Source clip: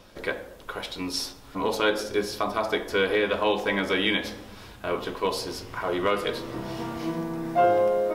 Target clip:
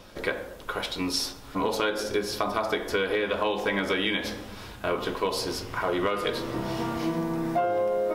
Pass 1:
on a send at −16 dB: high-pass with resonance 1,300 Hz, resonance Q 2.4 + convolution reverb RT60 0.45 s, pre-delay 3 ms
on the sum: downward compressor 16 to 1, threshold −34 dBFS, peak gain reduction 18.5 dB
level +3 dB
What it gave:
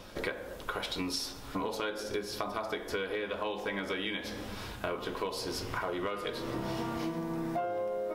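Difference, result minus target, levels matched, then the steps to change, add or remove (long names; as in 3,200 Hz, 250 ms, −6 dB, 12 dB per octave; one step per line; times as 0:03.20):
downward compressor: peak gain reduction +8.5 dB
change: downward compressor 16 to 1, threshold −25 dBFS, peak gain reduction 10 dB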